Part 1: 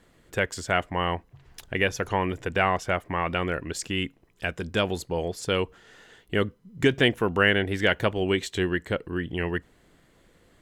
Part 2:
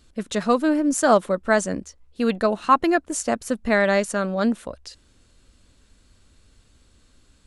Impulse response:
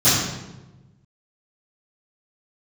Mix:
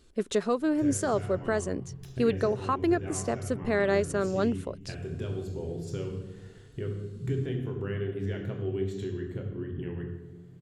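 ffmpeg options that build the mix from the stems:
-filter_complex "[0:a]equalizer=frequency=92:width=0.32:gain=12.5,acompressor=threshold=-28dB:ratio=4,adelay=450,volume=-12dB,asplit=2[link_01][link_02];[link_02]volume=-23dB[link_03];[1:a]alimiter=limit=-15dB:level=0:latency=1:release=412,volume=-4.5dB,asplit=2[link_04][link_05];[link_05]apad=whole_len=487849[link_06];[link_01][link_06]sidechaincompress=threshold=-30dB:ratio=8:attack=5.9:release=729[link_07];[2:a]atrim=start_sample=2205[link_08];[link_03][link_08]afir=irnorm=-1:irlink=0[link_09];[link_07][link_04][link_09]amix=inputs=3:normalize=0,equalizer=frequency=400:width_type=o:width=0.45:gain=11"

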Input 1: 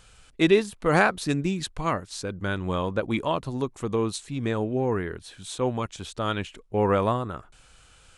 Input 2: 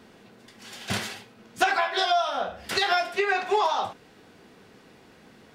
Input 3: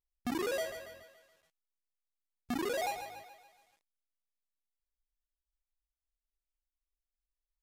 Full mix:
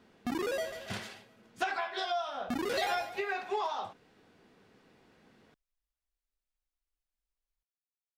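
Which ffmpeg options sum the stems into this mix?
ffmpeg -i stem1.wav -i stem2.wav -i stem3.wav -filter_complex "[1:a]volume=-10dB[link_01];[2:a]volume=1dB[link_02];[link_01][link_02]amix=inputs=2:normalize=0,highshelf=frequency=6400:gain=-6" out.wav

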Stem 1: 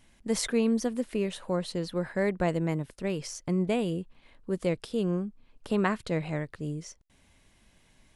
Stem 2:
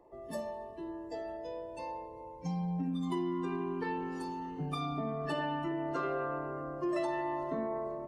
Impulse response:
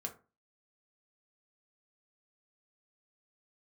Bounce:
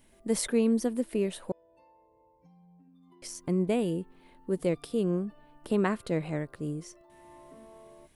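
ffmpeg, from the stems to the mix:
-filter_complex "[0:a]equalizer=frequency=330:width_type=o:width=1.7:gain=5.5,volume=-3.5dB,asplit=3[link_01][link_02][link_03];[link_01]atrim=end=1.52,asetpts=PTS-STARTPTS,afade=type=out:start_time=1.516:duration=0.004:curve=hsin[link_04];[link_02]atrim=start=1.52:end=3.22,asetpts=PTS-STARTPTS,volume=0[link_05];[link_03]atrim=start=3.22,asetpts=PTS-STARTPTS,afade=type=in:duration=0.004:curve=hsin[link_06];[link_04][link_05][link_06]concat=n=3:v=0:a=1[link_07];[1:a]equalizer=frequency=8100:width=1:gain=-14,acompressor=threshold=-43dB:ratio=3,volume=-8dB,afade=type=in:start_time=7.08:duration=0.3:silence=0.398107[link_08];[link_07][link_08]amix=inputs=2:normalize=0,aexciter=amount=2.9:drive=3.2:freq=8600"

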